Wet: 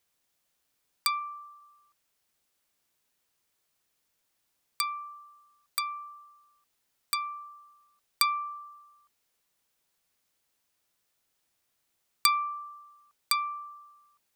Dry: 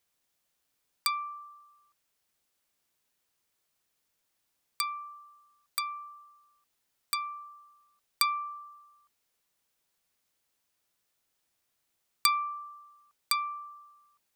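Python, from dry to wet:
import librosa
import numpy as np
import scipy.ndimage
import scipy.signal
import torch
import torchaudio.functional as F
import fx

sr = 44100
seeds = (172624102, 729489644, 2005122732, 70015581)

y = fx.highpass(x, sr, hz=840.0, slope=12, at=(1.19, 1.6), fade=0.02)
y = F.gain(torch.from_numpy(y), 1.5).numpy()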